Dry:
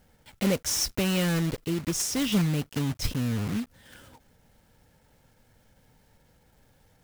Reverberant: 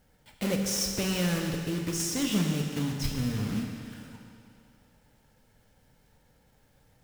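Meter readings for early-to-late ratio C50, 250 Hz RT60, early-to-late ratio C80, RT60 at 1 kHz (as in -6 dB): 3.5 dB, 2.5 s, 4.5 dB, 2.5 s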